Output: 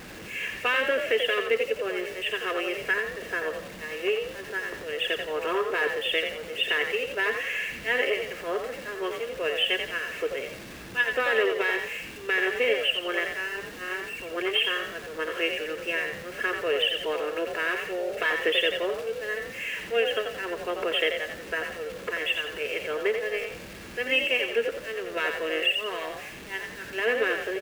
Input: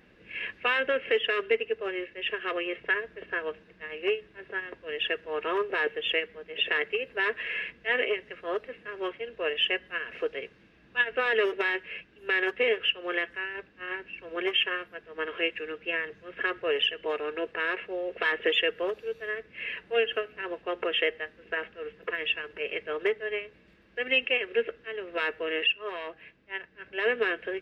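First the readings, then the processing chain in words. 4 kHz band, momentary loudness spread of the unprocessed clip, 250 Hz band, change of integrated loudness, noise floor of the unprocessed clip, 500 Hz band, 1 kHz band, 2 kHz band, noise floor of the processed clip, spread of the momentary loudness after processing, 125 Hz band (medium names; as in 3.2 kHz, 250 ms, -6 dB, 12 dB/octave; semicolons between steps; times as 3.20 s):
+2.5 dB, 11 LU, +2.0 dB, +2.0 dB, -59 dBFS, +2.5 dB, +2.5 dB, +2.0 dB, -42 dBFS, 9 LU, no reading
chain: jump at every zero crossing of -38.5 dBFS; frequency-shifting echo 87 ms, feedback 36%, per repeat +46 Hz, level -6 dB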